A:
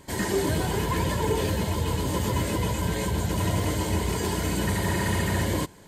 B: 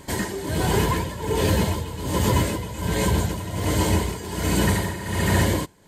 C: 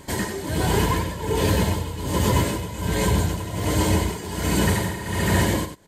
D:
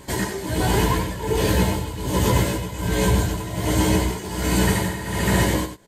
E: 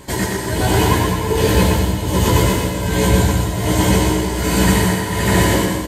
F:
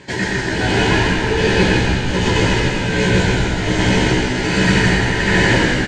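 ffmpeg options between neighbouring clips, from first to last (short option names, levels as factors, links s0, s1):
-af "tremolo=f=1.3:d=0.78,volume=2.11"
-af "aecho=1:1:93:0.335"
-filter_complex "[0:a]asplit=2[s0][s1];[s1]adelay=16,volume=0.562[s2];[s0][s2]amix=inputs=2:normalize=0"
-af "aecho=1:1:120|216|292.8|354.2|403.4:0.631|0.398|0.251|0.158|0.1,volume=1.5"
-filter_complex "[0:a]highpass=110,equalizer=f=280:t=q:w=4:g=-3,equalizer=f=630:t=q:w=4:g=-4,equalizer=f=1100:t=q:w=4:g=-8,equalizer=f=1700:t=q:w=4:g=7,equalizer=f=2500:t=q:w=4:g=5,lowpass=f=6100:w=0.5412,lowpass=f=6100:w=1.3066,asplit=8[s0][s1][s2][s3][s4][s5][s6][s7];[s1]adelay=161,afreqshift=-62,volume=0.708[s8];[s2]adelay=322,afreqshift=-124,volume=0.355[s9];[s3]adelay=483,afreqshift=-186,volume=0.178[s10];[s4]adelay=644,afreqshift=-248,volume=0.0881[s11];[s5]adelay=805,afreqshift=-310,volume=0.0442[s12];[s6]adelay=966,afreqshift=-372,volume=0.0221[s13];[s7]adelay=1127,afreqshift=-434,volume=0.0111[s14];[s0][s8][s9][s10][s11][s12][s13][s14]amix=inputs=8:normalize=0"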